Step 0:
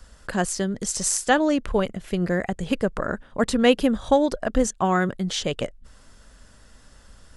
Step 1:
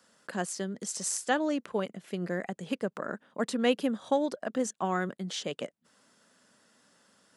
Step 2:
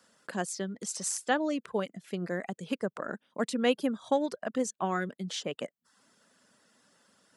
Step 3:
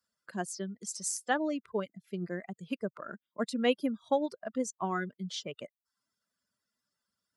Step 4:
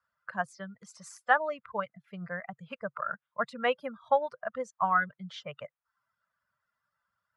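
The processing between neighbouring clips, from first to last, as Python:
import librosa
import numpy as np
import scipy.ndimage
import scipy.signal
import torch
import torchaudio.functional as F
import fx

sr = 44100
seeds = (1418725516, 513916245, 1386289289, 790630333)

y1 = scipy.signal.sosfilt(scipy.signal.butter(4, 170.0, 'highpass', fs=sr, output='sos'), x)
y1 = F.gain(torch.from_numpy(y1), -8.5).numpy()
y2 = fx.dereverb_blind(y1, sr, rt60_s=0.52)
y3 = fx.bin_expand(y2, sr, power=1.5)
y4 = fx.curve_eq(y3, sr, hz=(140.0, 350.0, 510.0, 1300.0, 4900.0, 8800.0), db=(0, -25, -3, 8, -15, -21))
y4 = F.gain(torch.from_numpy(y4), 4.0).numpy()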